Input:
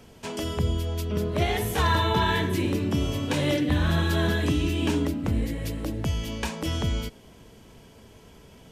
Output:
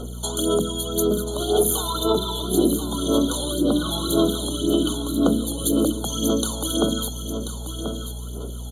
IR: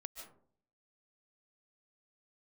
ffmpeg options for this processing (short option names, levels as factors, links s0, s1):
-filter_complex "[0:a]highpass=f=230:w=0.5412,highpass=f=230:w=1.3066,acompressor=threshold=0.0224:ratio=6,asplit=2[s0][s1];[1:a]atrim=start_sample=2205,highshelf=f=5500:g=10.5[s2];[s1][s2]afir=irnorm=-1:irlink=0,volume=0.473[s3];[s0][s3]amix=inputs=2:normalize=0,aphaser=in_gain=1:out_gain=1:delay=1.2:decay=0.67:speed=1.9:type=sinusoidal,equalizer=f=10000:w=1.4:g=12,aeval=exprs='val(0)+0.01*(sin(2*PI*60*n/s)+sin(2*PI*2*60*n/s)/2+sin(2*PI*3*60*n/s)/3+sin(2*PI*4*60*n/s)/4+sin(2*PI*5*60*n/s)/5)':c=same,equalizer=f=920:w=3.1:g=-12,bandreject=f=50:t=h:w=6,bandreject=f=100:t=h:w=6,bandreject=f=150:t=h:w=6,bandreject=f=200:t=h:w=6,bandreject=f=250:t=h:w=6,bandreject=f=300:t=h:w=6,aecho=1:1:1036:0.355,afftfilt=real='re*eq(mod(floor(b*sr/1024/1500),2),0)':imag='im*eq(mod(floor(b*sr/1024/1500),2),0)':win_size=1024:overlap=0.75,volume=2.66"